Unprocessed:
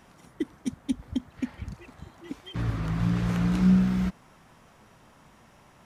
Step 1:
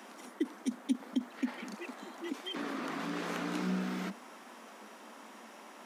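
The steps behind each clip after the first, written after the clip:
Butterworth high-pass 210 Hz 72 dB per octave
in parallel at −3 dB: compressor whose output falls as the input rises −44 dBFS, ratio −1
on the sum: floating-point word with a short mantissa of 6 bits
level −3 dB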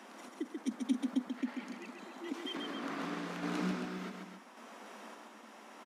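high-shelf EQ 11,000 Hz −7.5 dB
sample-and-hold tremolo, depth 55%
on a send: loudspeakers that aren't time-aligned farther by 47 metres −4 dB, 92 metres −9 dB

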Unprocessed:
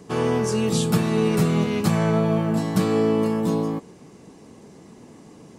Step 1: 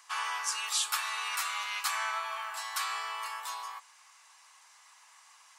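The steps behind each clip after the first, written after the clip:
Butterworth high-pass 1,000 Hz 36 dB per octave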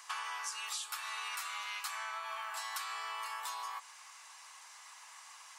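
downward compressor 10 to 1, threshold −42 dBFS, peak gain reduction 16 dB
level +4.5 dB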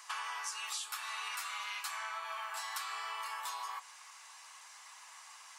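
flanger 0.6 Hz, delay 4.6 ms, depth 9.7 ms, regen −45%
level +4 dB

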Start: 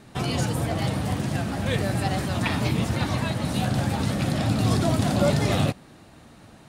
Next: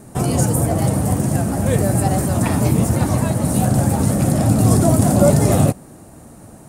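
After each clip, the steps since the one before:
drawn EQ curve 630 Hz 0 dB, 3,700 Hz −15 dB, 8,500 Hz +7 dB
level +8.5 dB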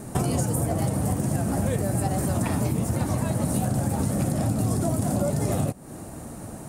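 downward compressor 12 to 1, threshold −24 dBFS, peak gain reduction 16.5 dB
level +3 dB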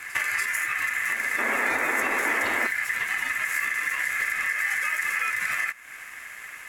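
ring modulation 1,900 Hz
sound drawn into the spectrogram noise, 0:01.38–0:02.67, 210–2,300 Hz −29 dBFS
echo ahead of the sound 289 ms −14 dB

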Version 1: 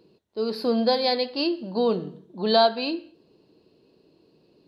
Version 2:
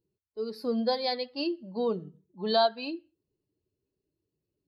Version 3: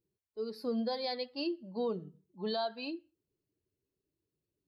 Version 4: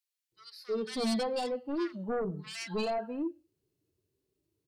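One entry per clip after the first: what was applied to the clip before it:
spectral dynamics exaggerated over time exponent 1.5; level −4.5 dB
brickwall limiter −21.5 dBFS, peak gain reduction 8 dB; level −4 dB
sine wavefolder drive 7 dB, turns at −25 dBFS; multiband delay without the direct sound highs, lows 320 ms, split 1,600 Hz; harmonic and percussive parts rebalanced percussive −9 dB; level −2.5 dB

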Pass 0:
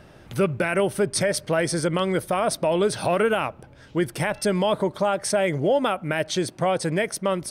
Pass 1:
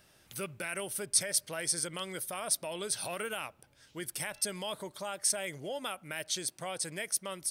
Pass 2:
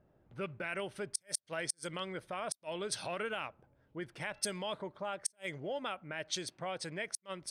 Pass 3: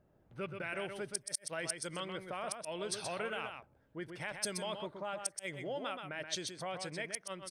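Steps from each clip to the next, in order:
first-order pre-emphasis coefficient 0.9
low-pass that shuts in the quiet parts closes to 640 Hz, open at −27 dBFS; gate with flip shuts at −18 dBFS, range −40 dB
single-tap delay 126 ms −6.5 dB; level −1.5 dB

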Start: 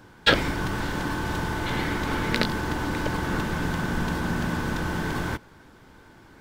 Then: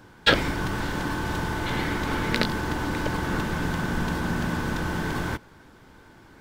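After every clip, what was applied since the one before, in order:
no processing that can be heard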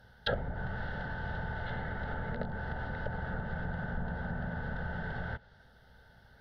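mains hum 60 Hz, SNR 33 dB
treble cut that deepens with the level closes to 910 Hz, closed at −21 dBFS
phaser with its sweep stopped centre 1,600 Hz, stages 8
level −6 dB

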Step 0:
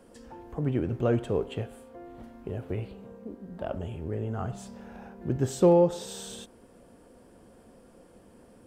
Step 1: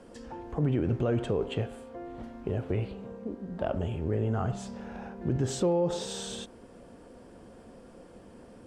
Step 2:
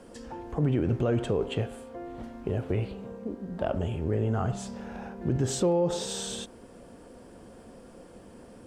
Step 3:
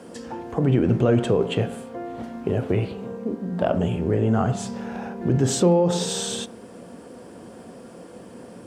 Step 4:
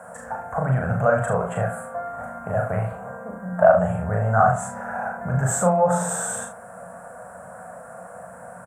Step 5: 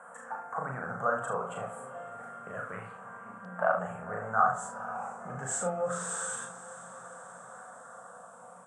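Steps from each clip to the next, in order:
low-pass filter 7,500 Hz 12 dB per octave; brickwall limiter −22.5 dBFS, peak gain reduction 11.5 dB; level +4 dB
high-shelf EQ 7,800 Hz +7 dB; level +1.5 dB
high-pass filter 110 Hz 12 dB per octave; on a send at −14 dB: convolution reverb RT60 0.45 s, pre-delay 3 ms; on the sum: level +7 dB
drawn EQ curve 180 Hz 0 dB, 340 Hz −25 dB, 640 Hz +14 dB, 950 Hz +7 dB, 1,500 Hz +14 dB, 3,000 Hz −18 dB, 4,800 Hz −22 dB, 7,600 Hz +6 dB; on a send: loudspeakers that aren't time-aligned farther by 13 metres −3 dB, 25 metres −10 dB; on the sum: level −3 dB
auto-filter notch saw down 0.29 Hz 430–5,400 Hz; loudspeaker in its box 300–9,000 Hz, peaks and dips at 630 Hz −10 dB, 1,200 Hz +7 dB, 3,100 Hz +5 dB, 4,800 Hz +4 dB; feedback delay with all-pass diffusion 481 ms, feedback 64%, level −15.5 dB; level −7 dB

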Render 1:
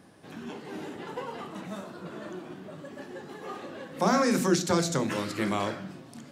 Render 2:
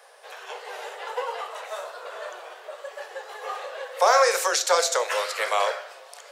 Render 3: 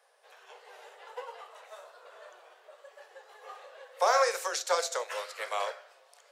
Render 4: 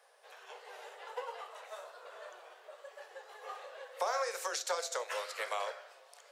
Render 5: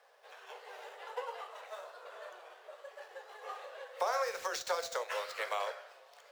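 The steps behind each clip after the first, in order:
Butterworth high-pass 460 Hz 72 dB per octave; level +8 dB
expander for the loud parts 1.5 to 1, over −33 dBFS; level −6 dB
downward compressor 3 to 1, threshold −36 dBFS, peak gain reduction 11.5 dB; level +1.5 dB
running median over 5 samples; level +1 dB

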